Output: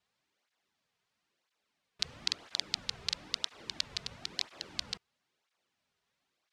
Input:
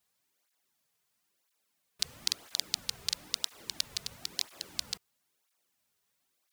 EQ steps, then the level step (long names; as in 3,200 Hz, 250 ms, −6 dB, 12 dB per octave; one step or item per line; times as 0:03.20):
low-pass filter 4,300 Hz 12 dB per octave
+2.0 dB